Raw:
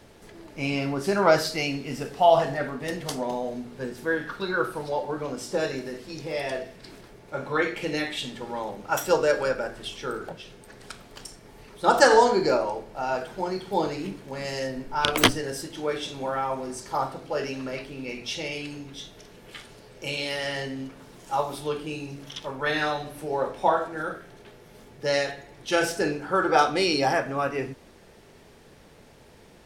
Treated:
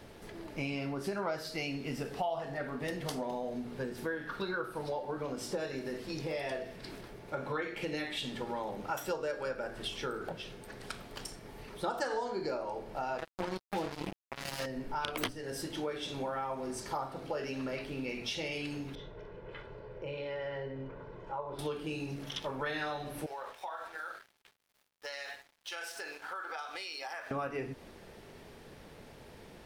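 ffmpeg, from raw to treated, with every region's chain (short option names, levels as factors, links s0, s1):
-filter_complex "[0:a]asettb=1/sr,asplit=3[s0][s1][s2];[s0]atrim=end=13.184[s3];[s1]atrim=start=13.18:end=14.66,asetpts=PTS-STARTPTS,afade=t=in:d=0.004:c=qsin,afade=t=out:st=1.476:d=0.004:c=qsin,aecho=1:1:6.1:0.94,atrim=end_sample=65268,acrusher=bits=3:mix=0:aa=0.5[s4];[s2]atrim=start=14.656[s5];[s3][s4]acrossfade=d=0.004:c1=hsin:c2=qsin[s6];[s6][s5]acrossfade=d=0.004:c1=qsin:c2=hsin,asettb=1/sr,asplit=3[s7][s8][s9];[s7]atrim=end=18.954[s10];[s8]atrim=start=18.95:end=21.59,asetpts=PTS-STARTPTS,afade=t=in:d=0.004:c=qsin,afade=t=out:st=2.636:d=0.004:c=qsin,lowpass=1500,aecho=1:1:2:0.62,atrim=end_sample=116424,acompressor=threshold=0.01:ratio=2:attack=3.2:release=140:knee=1:detection=peak[s11];[s9]atrim=start=21.586[s12];[s10][s11]acrossfade=d=0.004:c1=hsin:c2=qsin[s13];[s13][s12]acrossfade=d=0.004:c1=qsin:c2=hsin,asettb=1/sr,asplit=3[s14][s15][s16];[s14]atrim=end=23.264[s17];[s15]atrim=start=23.26:end=27.31,asetpts=PTS-STARTPTS,afade=t=in:d=0.004:c=qsin,afade=t=out:st=4.046:d=0.004:c=qsin,highpass=990,aeval=exprs='sgn(val(0))*max(abs(val(0))-0.00266,0)':c=same,acompressor=threshold=0.0141:ratio=8:attack=3.2:release=140:knee=1:detection=peak[s18];[s16]atrim=start=27.306[s19];[s17][s18]acrossfade=d=0.004:c1=hsin:c2=qsin[s20];[s20][s19]acrossfade=d=0.004:c1=qsin:c2=hsin,equalizer=f=7100:w=1.4:g=-4.5,acompressor=threshold=0.02:ratio=5"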